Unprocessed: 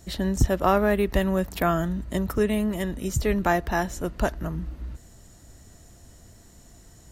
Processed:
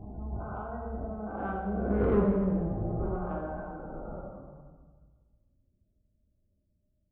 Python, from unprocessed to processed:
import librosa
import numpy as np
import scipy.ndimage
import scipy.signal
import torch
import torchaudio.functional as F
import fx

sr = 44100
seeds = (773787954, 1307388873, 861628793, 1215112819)

p1 = fx.spec_swells(x, sr, rise_s=2.59)
p2 = fx.doppler_pass(p1, sr, speed_mps=40, closest_m=6.0, pass_at_s=2.13)
p3 = scipy.signal.sosfilt(scipy.signal.butter(4, 1300.0, 'lowpass', fs=sr, output='sos'), p2)
p4 = fx.spec_gate(p3, sr, threshold_db=-20, keep='strong')
p5 = fx.level_steps(p4, sr, step_db=9)
p6 = p4 + F.gain(torch.from_numpy(p5), -2.5).numpy()
p7 = 10.0 ** (-19.0 / 20.0) * np.tanh(p6 / 10.0 ** (-19.0 / 20.0))
p8 = fx.rev_plate(p7, sr, seeds[0], rt60_s=1.5, hf_ratio=0.95, predelay_ms=0, drr_db=-2.5)
y = F.gain(torch.from_numpy(p8), -5.5).numpy()